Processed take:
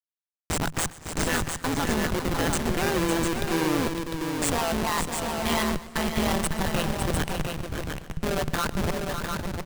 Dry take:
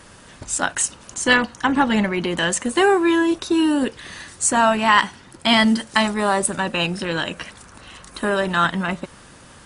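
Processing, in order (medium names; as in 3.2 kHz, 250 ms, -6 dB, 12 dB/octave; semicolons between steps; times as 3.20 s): reverb removal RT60 0.91 s; Schmitt trigger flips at -21 dBFS; AM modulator 160 Hz, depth 80%; multi-tap echo 125/556/702/841 ms -19.5/-7.5/-5/-20 dB; modulated delay 242 ms, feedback 69%, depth 98 cents, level -22 dB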